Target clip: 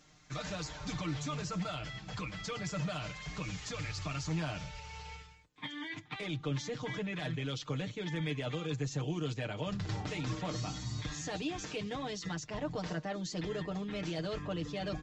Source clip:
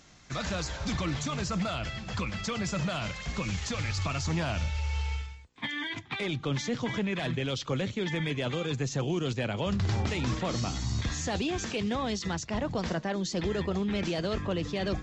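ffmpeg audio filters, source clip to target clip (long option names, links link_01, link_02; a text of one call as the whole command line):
ffmpeg -i in.wav -af "aecho=1:1:6.6:0.8,volume=-8.5dB" out.wav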